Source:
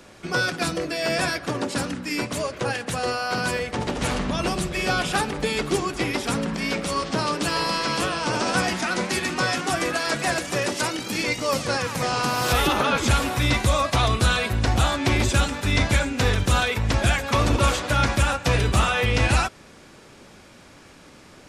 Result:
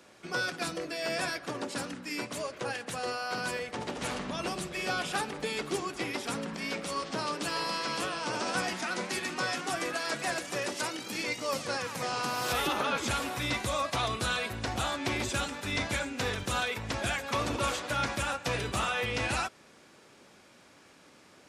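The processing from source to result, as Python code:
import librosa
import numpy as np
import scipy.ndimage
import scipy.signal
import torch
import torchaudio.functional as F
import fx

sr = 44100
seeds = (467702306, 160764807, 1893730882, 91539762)

y = fx.highpass(x, sr, hz=230.0, slope=6)
y = y * librosa.db_to_amplitude(-8.0)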